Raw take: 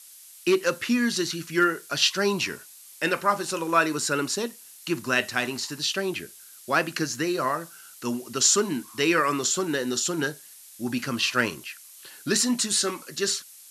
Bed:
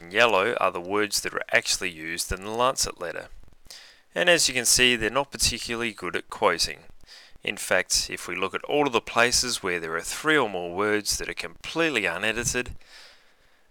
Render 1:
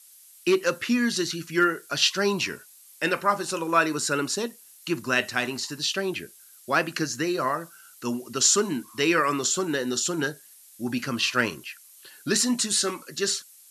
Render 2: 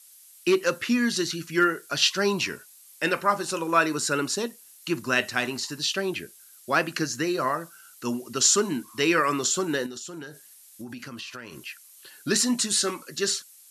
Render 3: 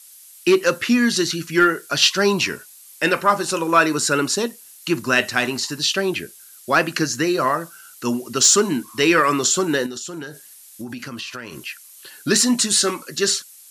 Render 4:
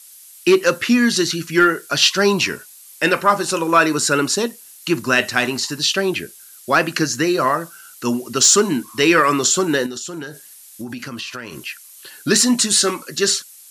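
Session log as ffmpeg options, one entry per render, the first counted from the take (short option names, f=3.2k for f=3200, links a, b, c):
-af "afftdn=nr=6:nf=-48"
-filter_complex "[0:a]asettb=1/sr,asplit=3[a][b][c];[a]atrim=end=9.864[d];[b]atrim=start=9.86:end=11.65,asetpts=PTS-STARTPTS,afade=t=in:d=0.004:c=qsin,afade=t=out:st=1.786:d=0.004:c=qsin,acompressor=threshold=-34dB:ratio=16:attack=3.2:release=140:knee=1:detection=peak[e];[c]atrim=start=11.646[f];[d][e]acrossfade=d=0.004:c1=hsin:c2=qsin[g];[g][f]acrossfade=d=0.004:c1=qsin:c2=hsin"
-af "acontrast=72"
-af "volume=2dB,alimiter=limit=-3dB:level=0:latency=1"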